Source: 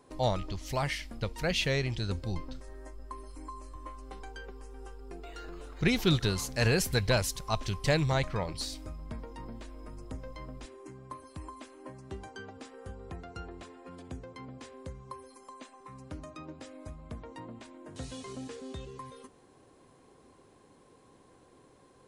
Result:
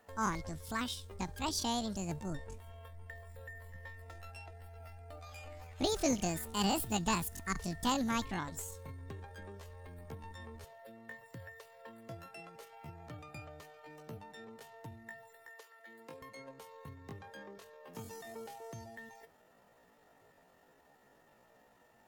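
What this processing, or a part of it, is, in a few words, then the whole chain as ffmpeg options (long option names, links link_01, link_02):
chipmunk voice: -filter_complex "[0:a]asettb=1/sr,asplit=3[link_01][link_02][link_03];[link_01]atrim=end=15.504[link_04];[link_02]atrim=start=15.5:end=16.23,asetpts=PTS-STARTPTS,afade=type=in:duration=0.004:curve=qsin,afade=type=out:start_time=0.726:duration=0.004:curve=qsin,highpass=170[link_05];[link_03]atrim=start=16.226[link_06];[link_04][link_05]acrossfade=duration=0.004:curve1=hsin:curve2=qsin[link_07];[link_07][link_06]acrossfade=duration=0.004:curve1=qsin:curve2=hsin,asetrate=76340,aresample=44100,atempo=0.577676,volume=-5.5dB"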